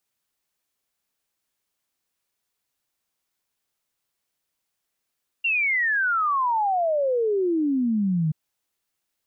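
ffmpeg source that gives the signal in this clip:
ffmpeg -f lavfi -i "aevalsrc='0.106*clip(min(t,2.88-t)/0.01,0,1)*sin(2*PI*2800*2.88/log(150/2800)*(exp(log(150/2800)*t/2.88)-1))':duration=2.88:sample_rate=44100" out.wav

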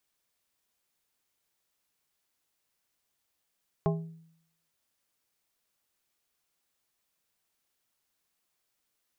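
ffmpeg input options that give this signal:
ffmpeg -f lavfi -i "aevalsrc='0.0708*pow(10,-3*t/0.71)*sin(2*PI*163*t)+0.0501*pow(10,-3*t/0.374)*sin(2*PI*407.5*t)+0.0355*pow(10,-3*t/0.269)*sin(2*PI*652*t)+0.0251*pow(10,-3*t/0.23)*sin(2*PI*815*t)+0.0178*pow(10,-3*t/0.192)*sin(2*PI*1059.5*t)':duration=0.89:sample_rate=44100" out.wav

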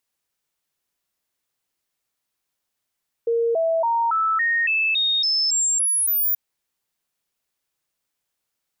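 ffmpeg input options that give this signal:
ffmpeg -f lavfi -i "aevalsrc='0.133*clip(min(mod(t,0.28),0.28-mod(t,0.28))/0.005,0,1)*sin(2*PI*464*pow(2,floor(t/0.28)/2)*mod(t,0.28))':duration=3.08:sample_rate=44100" out.wav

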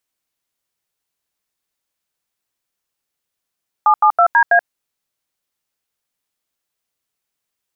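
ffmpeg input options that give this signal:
ffmpeg -f lavfi -i "aevalsrc='0.299*clip(min(mod(t,0.163),0.08-mod(t,0.163))/0.002,0,1)*(eq(floor(t/0.163),0)*(sin(2*PI*852*mod(t,0.163))+sin(2*PI*1209*mod(t,0.163)))+eq(floor(t/0.163),1)*(sin(2*PI*852*mod(t,0.163))+sin(2*PI*1209*mod(t,0.163)))+eq(floor(t/0.163),2)*(sin(2*PI*697*mod(t,0.163))+sin(2*PI*1336*mod(t,0.163)))+eq(floor(t/0.163),3)*(sin(2*PI*941*mod(t,0.163))+sin(2*PI*1633*mod(t,0.163)))+eq(floor(t/0.163),4)*(sin(2*PI*697*mod(t,0.163))+sin(2*PI*1633*mod(t,0.163))))':duration=0.815:sample_rate=44100" out.wav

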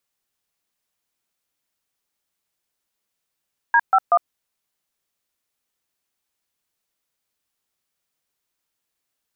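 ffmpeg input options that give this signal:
ffmpeg -f lavfi -i "aevalsrc='0.2*clip(min(mod(t,0.189),0.056-mod(t,0.189))/0.002,0,1)*(eq(floor(t/0.189),0)*(sin(2*PI*941*mod(t,0.189))+sin(2*PI*1633*mod(t,0.189)))+eq(floor(t/0.189),1)*(sin(2*PI*770*mod(t,0.189))+sin(2*PI*1336*mod(t,0.189)))+eq(floor(t/0.189),2)*(sin(2*PI*697*mod(t,0.189))+sin(2*PI*1209*mod(t,0.189))))':duration=0.567:sample_rate=44100" out.wav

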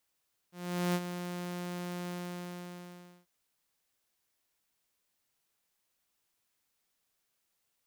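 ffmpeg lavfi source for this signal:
ffmpeg -f lavfi -i "aevalsrc='0.0596*(2*mod(177*t,1)-1)':duration=2.74:sample_rate=44100,afade=type=in:duration=0.426,afade=type=out:start_time=0.426:duration=0.05:silence=0.335,afade=type=out:start_time=1.56:duration=1.18" out.wav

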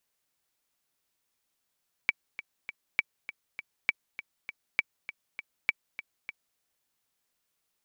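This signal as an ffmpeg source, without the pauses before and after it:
ffmpeg -f lavfi -i "aevalsrc='pow(10,(-10.5-14*gte(mod(t,3*60/200),60/200))/20)*sin(2*PI*2300*mod(t,60/200))*exp(-6.91*mod(t,60/200)/0.03)':duration=4.5:sample_rate=44100" out.wav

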